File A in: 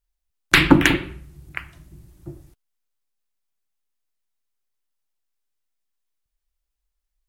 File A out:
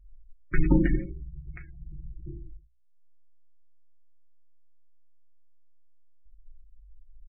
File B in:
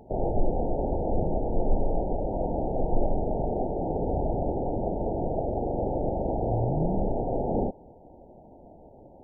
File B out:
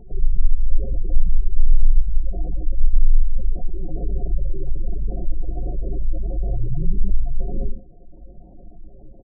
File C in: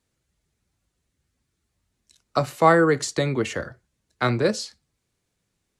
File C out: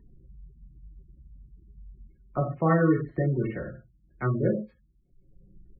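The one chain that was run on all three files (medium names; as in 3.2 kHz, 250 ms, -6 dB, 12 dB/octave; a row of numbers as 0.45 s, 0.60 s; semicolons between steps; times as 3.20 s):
comb 5.5 ms, depth 36%; in parallel at -3 dB: upward compressor, threshold -26 dBFS; on the sum: four-pole ladder low-pass 2.9 kHz, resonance 35%; tilt EQ -4.5 dB/octave; gated-style reverb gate 160 ms falling, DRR -0.5 dB; spectral gate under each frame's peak -25 dB strong; hum notches 60/120 Hz; loudness maximiser -10 dB; normalise loudness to -27 LUFS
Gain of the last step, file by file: -6.5 dB, -2.5 dB, -0.5 dB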